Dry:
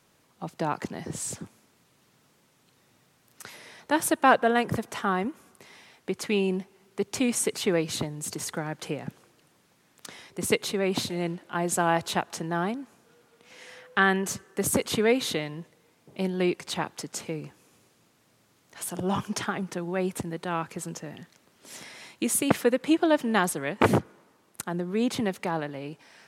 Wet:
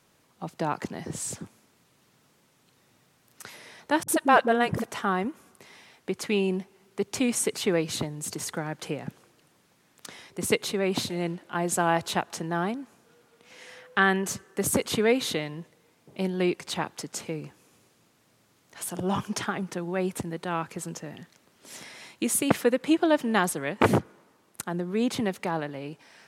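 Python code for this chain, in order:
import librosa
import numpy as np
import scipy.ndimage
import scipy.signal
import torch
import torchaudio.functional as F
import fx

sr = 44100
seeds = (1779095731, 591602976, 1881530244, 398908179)

y = fx.dispersion(x, sr, late='highs', ms=53.0, hz=320.0, at=(4.03, 4.84))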